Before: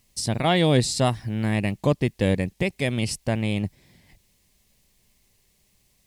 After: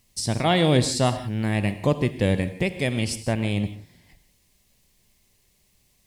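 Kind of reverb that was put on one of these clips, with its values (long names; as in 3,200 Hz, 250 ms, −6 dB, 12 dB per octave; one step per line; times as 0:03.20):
reverb whose tail is shaped and stops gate 200 ms flat, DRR 10 dB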